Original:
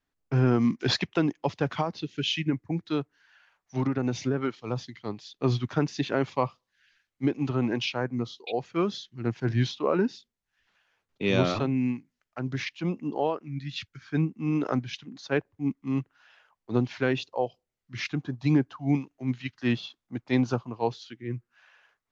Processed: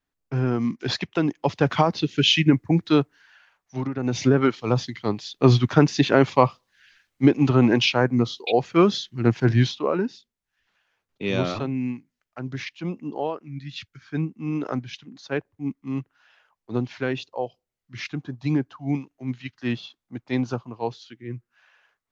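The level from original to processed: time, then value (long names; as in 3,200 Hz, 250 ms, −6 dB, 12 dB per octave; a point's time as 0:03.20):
0:00.92 −1 dB
0:01.90 +10 dB
0:03.00 +10 dB
0:03.93 −2 dB
0:04.25 +9.5 dB
0:09.38 +9.5 dB
0:10.05 −0.5 dB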